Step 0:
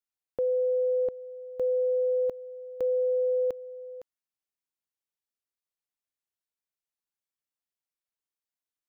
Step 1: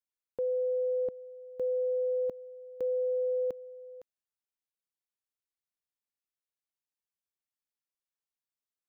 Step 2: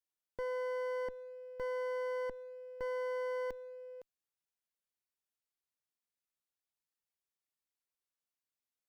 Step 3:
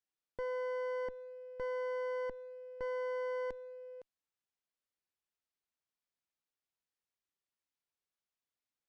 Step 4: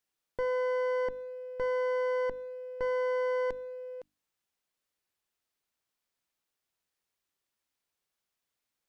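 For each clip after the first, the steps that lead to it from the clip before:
dynamic equaliser 210 Hz, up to +7 dB, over −46 dBFS, Q 0.84; level −6 dB
asymmetric clip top −45.5 dBFS, bottom −29.5 dBFS; level −1.5 dB
high-frequency loss of the air 66 metres
mains-hum notches 50/100/150/200/250/300 Hz; level +7.5 dB

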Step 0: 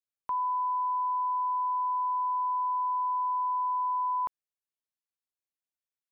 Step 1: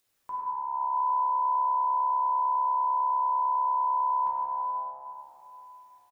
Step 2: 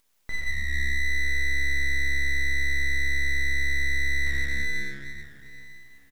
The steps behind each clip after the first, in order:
upward compression, threshold −53 dBFS; echo with shifted repeats 94 ms, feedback 63%, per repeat −69 Hz, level −12.5 dB; dense smooth reverb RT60 3.7 s, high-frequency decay 0.3×, DRR −6.5 dB; level −6.5 dB
full-wave rectification; brickwall limiter −23 dBFS, peak gain reduction 3 dB; level +7 dB

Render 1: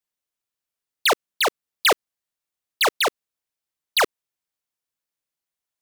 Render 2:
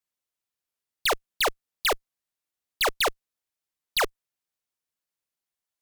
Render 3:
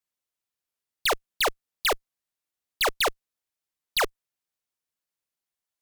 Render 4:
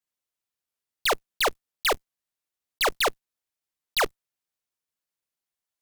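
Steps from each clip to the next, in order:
asymmetric clip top −27 dBFS, bottom −20 dBFS; leveller curve on the samples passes 1
no processing that can be heard
one scale factor per block 3 bits

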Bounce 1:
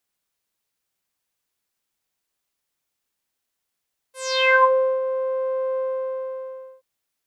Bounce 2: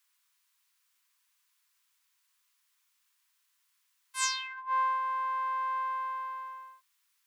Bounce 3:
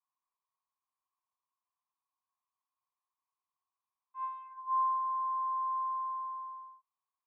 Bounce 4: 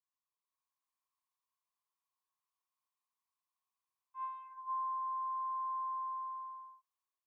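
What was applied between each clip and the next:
elliptic high-pass filter 970 Hz, stop band 40 dB; compressor whose output falls as the input rises −33 dBFS, ratio −1
formant resonators in series a; level +5.5 dB
automatic gain control gain up to 7 dB; low-shelf EQ 500 Hz −11.5 dB; downward compressor, threshold −28 dBFS, peak gain reduction 5.5 dB; level −7.5 dB

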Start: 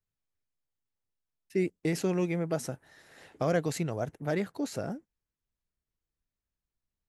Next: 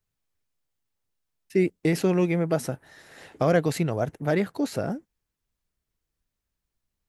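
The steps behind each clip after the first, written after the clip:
dynamic equaliser 6,800 Hz, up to −6 dB, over −57 dBFS, Q 1.6
level +6.5 dB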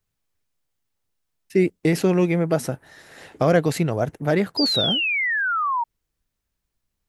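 sound drawn into the spectrogram fall, 0:04.57–0:05.84, 910–5,000 Hz −26 dBFS
level +3.5 dB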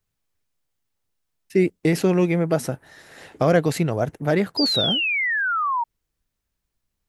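no processing that can be heard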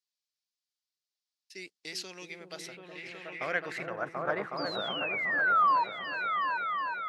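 echo whose low-pass opens from repeat to repeat 368 ms, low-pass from 400 Hz, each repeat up 2 octaves, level −3 dB
band-pass filter sweep 4,700 Hz → 1,200 Hz, 0:02.32–0:04.27

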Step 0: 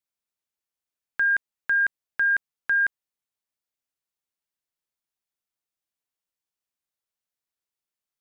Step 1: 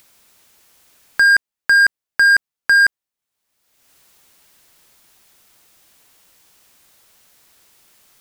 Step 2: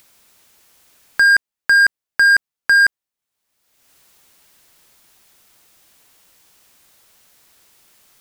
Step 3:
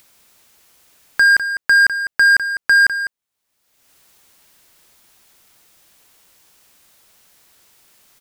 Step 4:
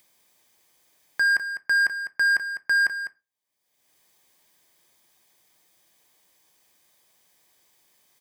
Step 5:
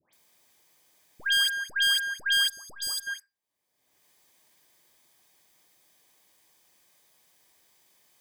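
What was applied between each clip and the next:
in parallel at +2.5 dB: output level in coarse steps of 12 dB; on the sum: leveller curve on the samples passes 2; upward compression, threshold −31 dBFS; level +2.5 dB
no processing that can be heard
single-tap delay 202 ms −11 dB
notch comb filter 1,400 Hz; on a send at −12.5 dB: convolution reverb RT60 0.30 s, pre-delay 4 ms; on the sum: level −9 dB
phase distortion by the signal itself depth 0.15 ms; all-pass dispersion highs, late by 133 ms, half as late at 1,600 Hz; gain on a spectral selection 0:02.48–0:03.07, 1,300–3,300 Hz −19 dB

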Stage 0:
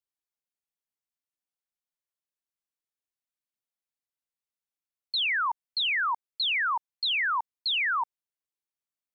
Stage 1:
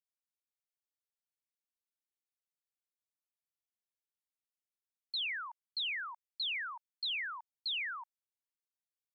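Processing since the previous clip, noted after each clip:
Bessel high-pass filter 2,200 Hz, order 2
level −7.5 dB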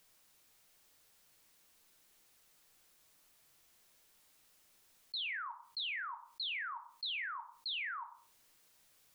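rectangular room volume 140 cubic metres, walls furnished, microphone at 0.53 metres
envelope flattener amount 50%
level −4 dB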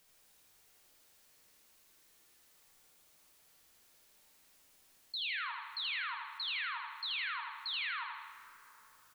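on a send: repeating echo 80 ms, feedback 53%, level −4 dB
on the sum: dense smooth reverb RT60 3.3 s, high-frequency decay 0.45×, DRR 8 dB

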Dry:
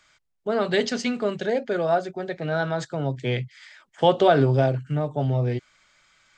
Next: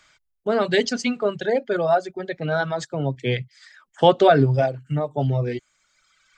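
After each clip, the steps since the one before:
reverb reduction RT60 1.7 s
level +3.5 dB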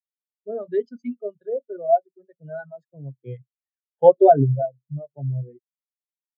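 every bin expanded away from the loudest bin 2.5 to 1
level +1.5 dB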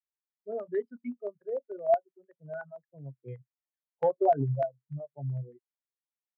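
downward compressor 6 to 1, threshold −16 dBFS, peak gain reduction 10 dB
auto-filter low-pass square 6.7 Hz 940–1,900 Hz
level −7.5 dB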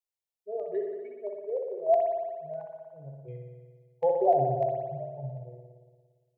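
phaser with its sweep stopped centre 580 Hz, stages 4
spring reverb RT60 1.6 s, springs 57 ms, chirp 35 ms, DRR 1 dB
level +1 dB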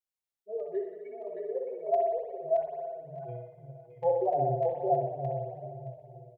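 repeating echo 620 ms, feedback 18%, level −3.5 dB
barber-pole flanger 5.6 ms −2.4 Hz

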